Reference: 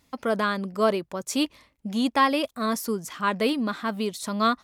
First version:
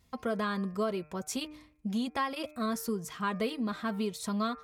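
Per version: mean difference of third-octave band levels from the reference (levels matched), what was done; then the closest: 3.0 dB: bass shelf 130 Hz +10.5 dB; de-hum 151.3 Hz, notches 17; compression, threshold -23 dBFS, peak gain reduction 8 dB; comb of notches 290 Hz; trim -4 dB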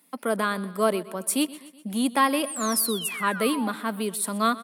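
5.5 dB: Chebyshev high-pass 170 Hz, order 5; resonant high shelf 7.9 kHz +8 dB, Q 3; painted sound fall, 2.46–3.70 s, 740–9800 Hz -35 dBFS; on a send: feedback delay 125 ms, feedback 55%, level -18.5 dB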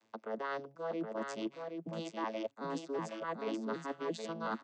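10.5 dB: vocoder on a broken chord major triad, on A2, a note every 372 ms; high-pass 370 Hz 12 dB/octave; reverse; compression 12:1, threshold -38 dBFS, peak gain reduction 20 dB; reverse; delay 771 ms -5 dB; trim +2.5 dB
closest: first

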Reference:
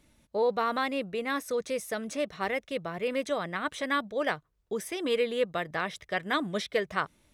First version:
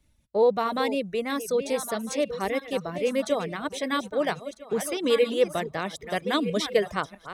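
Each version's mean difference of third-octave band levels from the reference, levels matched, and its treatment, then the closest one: 4.5 dB: backward echo that repeats 650 ms, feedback 46%, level -9 dB; reverb removal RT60 0.56 s; dynamic bell 1.6 kHz, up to -8 dB, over -43 dBFS, Q 0.82; three bands expanded up and down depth 40%; trim +6.5 dB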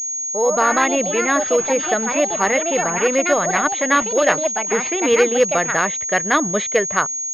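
7.0 dB: bass shelf 200 Hz -6.5 dB; level rider gain up to 11 dB; ever faster or slower copies 158 ms, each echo +4 st, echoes 2, each echo -6 dB; class-D stage that switches slowly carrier 6.6 kHz; trim +2 dB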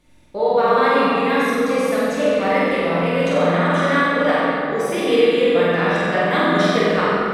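10.0 dB: treble shelf 6.7 kHz -6 dB; in parallel at +0.5 dB: level held to a coarse grid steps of 20 dB; on the sum: flutter echo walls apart 8 m, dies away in 0.91 s; simulated room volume 160 m³, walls hard, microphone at 0.9 m; trim +1 dB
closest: first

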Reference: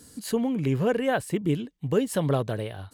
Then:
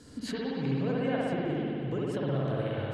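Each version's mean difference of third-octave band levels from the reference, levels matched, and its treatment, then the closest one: 10.5 dB: low-pass 4.9 kHz 12 dB/octave; compression 6:1, threshold -34 dBFS, peak gain reduction 15.5 dB; spring tank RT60 2.8 s, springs 59 ms, chirp 45 ms, DRR -5.5 dB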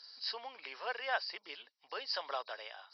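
14.5 dB: knee-point frequency compression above 3.8 kHz 4:1; high-pass 780 Hz 24 dB/octave; trim -4 dB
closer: first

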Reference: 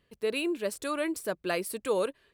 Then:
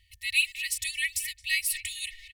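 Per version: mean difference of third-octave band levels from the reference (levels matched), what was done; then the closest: 18.5 dB: speakerphone echo 220 ms, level -11 dB; FFT band-reject 100–1800 Hz; comb 2.7 ms, depth 95%; trim +7.5 dB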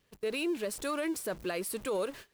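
4.0 dB: jump at every zero crossing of -41 dBFS; gate -42 dBFS, range -24 dB; peak limiter -23 dBFS, peak gain reduction 6 dB; trim -2 dB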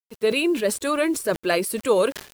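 2.5 dB: coarse spectral quantiser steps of 15 dB; bit crusher 10-bit; decay stretcher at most 130 dB/s; trim +9 dB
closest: third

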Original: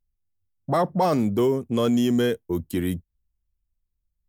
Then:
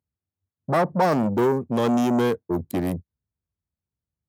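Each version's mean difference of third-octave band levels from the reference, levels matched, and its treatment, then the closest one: 4.0 dB: local Wiener filter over 15 samples; high-pass 85 Hz 24 dB/octave; transformer saturation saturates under 620 Hz; trim +3 dB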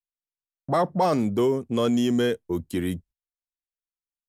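1.0 dB: low-pass 11 kHz 12 dB/octave; gate -46 dBFS, range -32 dB; bass shelf 210 Hz -3.5 dB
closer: second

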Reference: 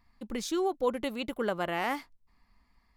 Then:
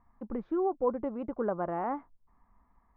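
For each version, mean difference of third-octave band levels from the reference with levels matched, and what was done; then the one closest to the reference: 8.5 dB: low-pass 1.2 kHz 24 dB/octave; tape noise reduction on one side only encoder only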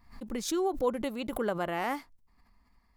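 2.0 dB: peaking EQ 3.1 kHz -4.5 dB 1.7 oct; swell ahead of each attack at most 110 dB/s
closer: second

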